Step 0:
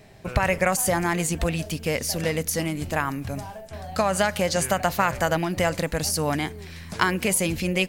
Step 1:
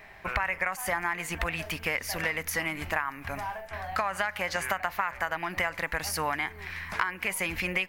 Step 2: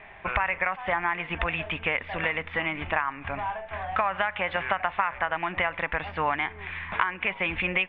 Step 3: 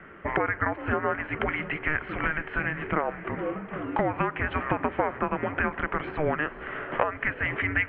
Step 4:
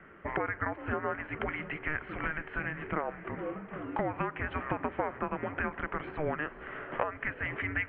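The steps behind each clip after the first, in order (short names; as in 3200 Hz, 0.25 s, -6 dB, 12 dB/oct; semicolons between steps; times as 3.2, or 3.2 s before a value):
ten-band EQ 125 Hz -12 dB, 250 Hz -6 dB, 500 Hz -6 dB, 1000 Hz +7 dB, 2000 Hz +10 dB, 4000 Hz -4 dB, 8000 Hz -9 dB; compressor 6:1, threshold -26 dBFS, peak gain reduction 16.5 dB
rippled Chebyshev low-pass 3600 Hz, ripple 3 dB; gain +4.5 dB
frequency shift -460 Hz; diffused feedback echo 0.527 s, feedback 48%, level -16 dB
air absorption 93 m; gain -6 dB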